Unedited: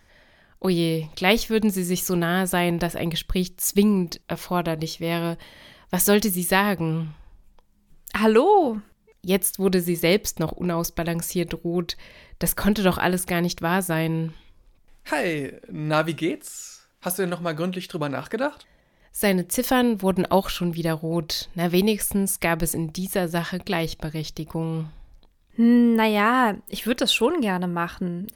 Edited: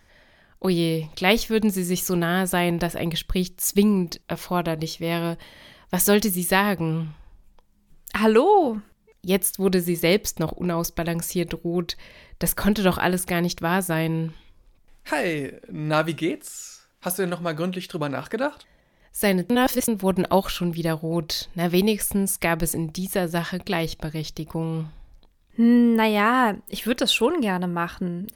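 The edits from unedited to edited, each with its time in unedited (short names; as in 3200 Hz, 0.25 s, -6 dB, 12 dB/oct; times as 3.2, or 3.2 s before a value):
19.5–19.88 reverse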